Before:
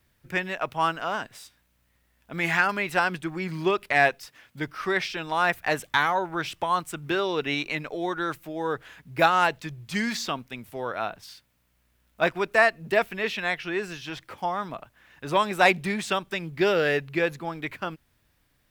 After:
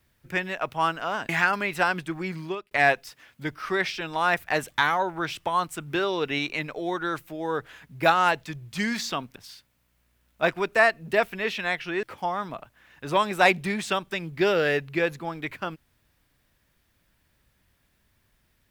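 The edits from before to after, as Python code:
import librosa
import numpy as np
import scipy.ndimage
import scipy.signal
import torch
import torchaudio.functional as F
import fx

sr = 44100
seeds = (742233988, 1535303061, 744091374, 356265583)

y = fx.edit(x, sr, fx.cut(start_s=1.29, length_s=1.16),
    fx.fade_out_span(start_s=3.41, length_s=0.46),
    fx.cut(start_s=10.52, length_s=0.63),
    fx.cut(start_s=13.82, length_s=0.41), tone=tone)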